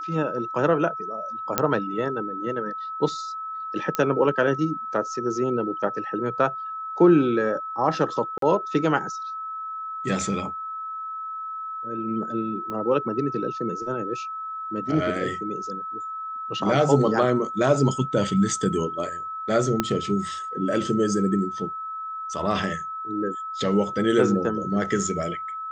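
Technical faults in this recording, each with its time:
tone 1300 Hz -30 dBFS
1.58 pop -3 dBFS
3.95 pop -10 dBFS
8.38–8.42 gap 43 ms
12.7 pop -20 dBFS
19.8 pop -7 dBFS

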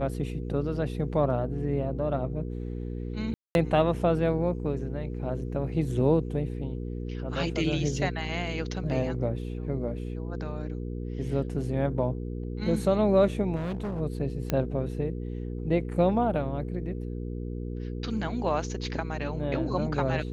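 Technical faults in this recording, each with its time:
hum 60 Hz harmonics 8 -34 dBFS
3.34–3.55 gap 0.211 s
13.55–14.01 clipped -28.5 dBFS
14.5 pop -13 dBFS

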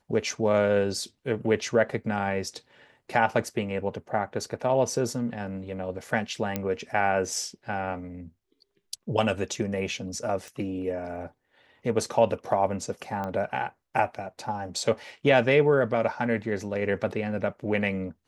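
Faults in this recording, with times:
6.56 pop -13 dBFS
10.48 pop -26 dBFS
13.24 pop -21 dBFS

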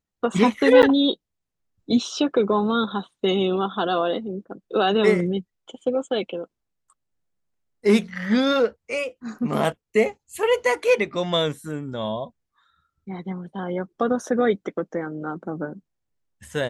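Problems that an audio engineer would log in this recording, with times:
0.82–0.83 gap 9 ms

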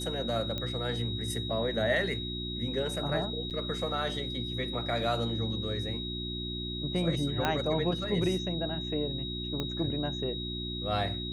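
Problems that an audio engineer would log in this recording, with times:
hum 60 Hz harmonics 6 -38 dBFS
tone 3800 Hz -37 dBFS
0.58 pop -20 dBFS
3.5–3.51 gap 7.7 ms
7.45 pop -13 dBFS
9.6 pop -19 dBFS

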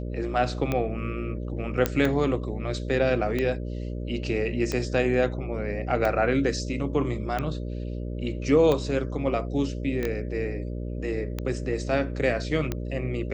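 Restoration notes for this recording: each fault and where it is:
buzz 60 Hz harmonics 10 -32 dBFS
tick 45 rpm -14 dBFS
1.86 pop -8 dBFS
10.03 pop -17 dBFS

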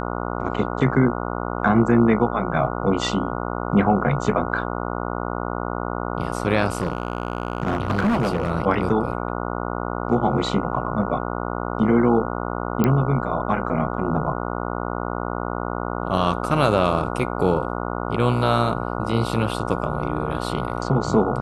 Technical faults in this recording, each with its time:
buzz 60 Hz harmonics 24 -27 dBFS
6.68–8.51 clipped -16 dBFS
12.84 pop -7 dBFS

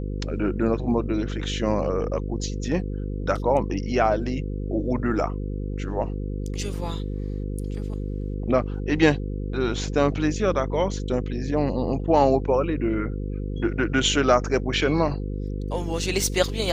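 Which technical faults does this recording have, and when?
buzz 50 Hz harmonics 10 -29 dBFS

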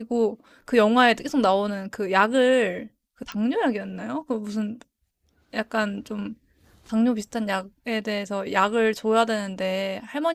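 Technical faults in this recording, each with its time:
3.32 pop -20 dBFS

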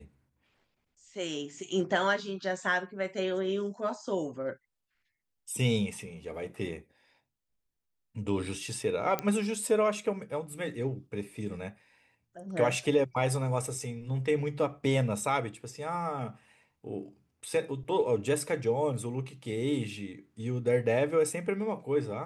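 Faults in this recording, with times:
9.19 pop -15 dBFS

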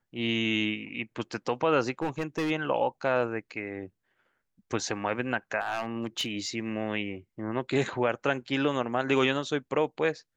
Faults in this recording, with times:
2.02–2.51 clipped -25 dBFS
5.61–6.49 clipped -24.5 dBFS

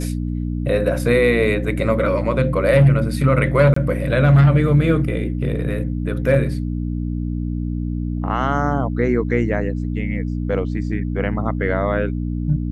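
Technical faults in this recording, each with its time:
hum 60 Hz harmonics 5 -23 dBFS
3.74–3.76 gap 24 ms

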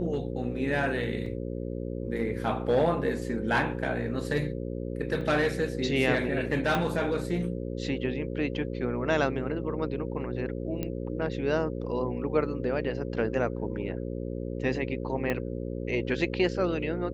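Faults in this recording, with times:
buzz 60 Hz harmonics 9 -34 dBFS
1.26 gap 3.1 ms
5.21 gap 2.9 ms
6.75 pop -14 dBFS
10.83 pop -18 dBFS
15.3 pop -16 dBFS

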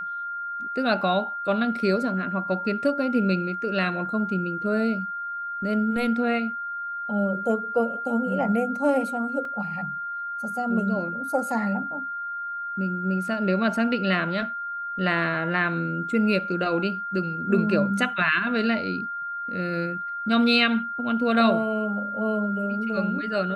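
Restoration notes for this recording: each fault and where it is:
tone 1400 Hz -29 dBFS
9.45 gap 2.3 ms

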